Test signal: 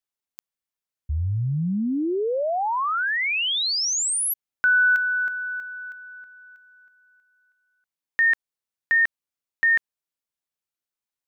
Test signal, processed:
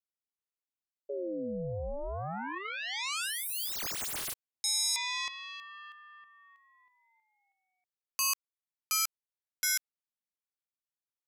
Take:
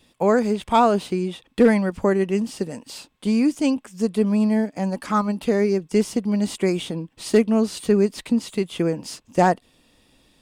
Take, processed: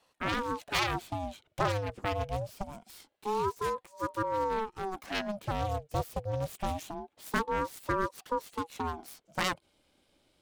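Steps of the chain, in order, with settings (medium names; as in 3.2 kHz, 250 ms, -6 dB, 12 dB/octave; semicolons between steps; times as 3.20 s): self-modulated delay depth 0.65 ms; ring modulator with a swept carrier 530 Hz, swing 45%, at 0.25 Hz; trim -8.5 dB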